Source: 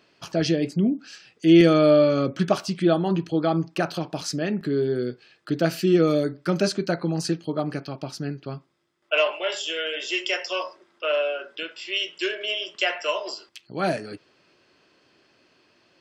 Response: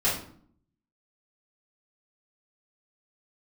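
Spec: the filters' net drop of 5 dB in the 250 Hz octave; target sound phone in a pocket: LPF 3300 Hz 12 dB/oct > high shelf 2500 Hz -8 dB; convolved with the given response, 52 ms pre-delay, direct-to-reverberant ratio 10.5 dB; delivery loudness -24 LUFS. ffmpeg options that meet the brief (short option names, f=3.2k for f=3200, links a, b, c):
-filter_complex "[0:a]equalizer=f=250:t=o:g=-8,asplit=2[a][b];[1:a]atrim=start_sample=2205,adelay=52[c];[b][c]afir=irnorm=-1:irlink=0,volume=-22.5dB[d];[a][d]amix=inputs=2:normalize=0,lowpass=3.3k,highshelf=f=2.5k:g=-8,volume=3dB"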